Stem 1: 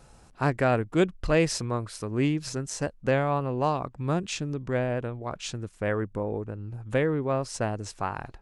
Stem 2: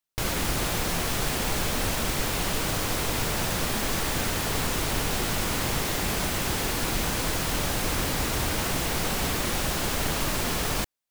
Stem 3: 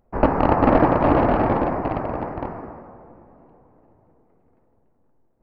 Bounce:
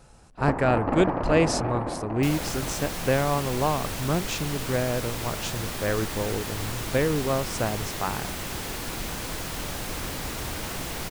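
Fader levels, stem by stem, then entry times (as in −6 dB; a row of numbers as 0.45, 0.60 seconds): +1.0, −5.5, −10.0 decibels; 0.00, 2.05, 0.25 seconds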